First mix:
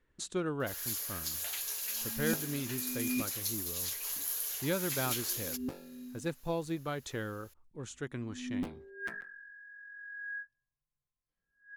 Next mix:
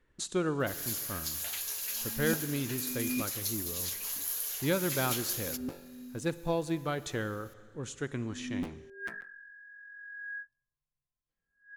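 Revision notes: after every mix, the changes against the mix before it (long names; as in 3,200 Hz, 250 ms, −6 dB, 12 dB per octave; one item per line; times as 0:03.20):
reverb: on, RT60 1.9 s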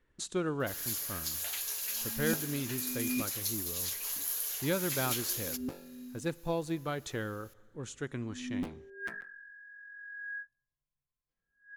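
speech: send −9.5 dB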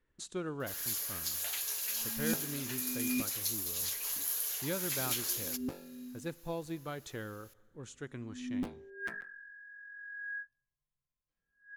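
speech −5.5 dB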